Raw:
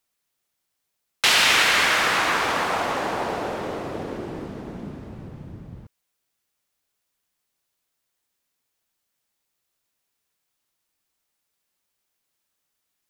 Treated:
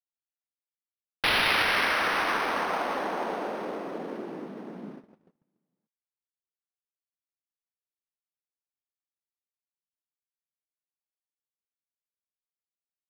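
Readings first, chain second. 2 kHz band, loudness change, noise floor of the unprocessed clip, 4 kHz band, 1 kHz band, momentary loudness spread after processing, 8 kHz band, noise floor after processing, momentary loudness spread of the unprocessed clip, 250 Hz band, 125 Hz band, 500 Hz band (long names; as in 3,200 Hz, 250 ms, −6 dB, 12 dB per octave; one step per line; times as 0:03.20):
−5.5 dB, −6.5 dB, −79 dBFS, −8.5 dB, −4.5 dB, 19 LU, −16.5 dB, below −85 dBFS, 22 LU, −4.5 dB, −10.0 dB, −4.0 dB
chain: pitch vibrato 1.5 Hz 13 cents
Butterworth high-pass 180 Hz 36 dB per octave
noise gate −38 dBFS, range −33 dB
linearly interpolated sample-rate reduction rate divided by 6×
level −4 dB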